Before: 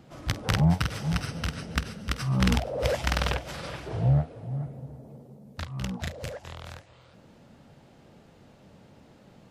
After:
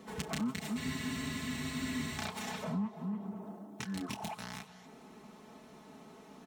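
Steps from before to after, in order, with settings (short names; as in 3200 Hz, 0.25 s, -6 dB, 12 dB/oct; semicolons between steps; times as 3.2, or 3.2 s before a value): HPF 70 Hz 6 dB/oct; notch 3200 Hz, Q 14; comb 6.8 ms, depth 71%; in parallel at -2 dB: limiter -21 dBFS, peak gain reduction 13 dB; on the sum: compressor 2.5:1, threshold -31 dBFS, peak gain reduction 12.5 dB; wide varispeed 1.47×; on a send: echo 92 ms -23 dB; on the sum: spectral freeze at 0.8, 1.38 s; gain -6.5 dB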